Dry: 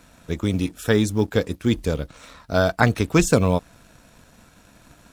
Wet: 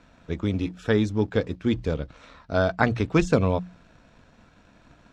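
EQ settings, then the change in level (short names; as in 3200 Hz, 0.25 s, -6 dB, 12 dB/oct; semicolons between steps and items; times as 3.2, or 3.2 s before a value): air absorption 150 m; notches 60/120/180 Hz; -2.5 dB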